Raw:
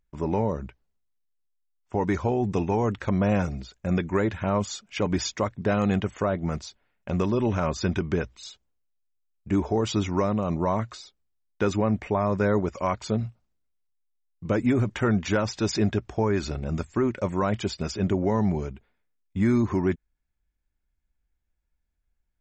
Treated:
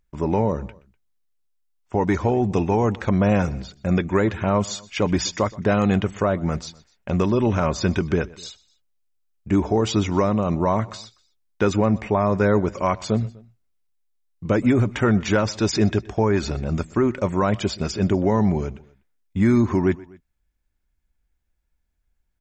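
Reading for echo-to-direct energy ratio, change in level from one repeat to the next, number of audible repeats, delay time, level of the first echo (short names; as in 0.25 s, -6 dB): -20.5 dB, -4.5 dB, 2, 0.124 s, -22.0 dB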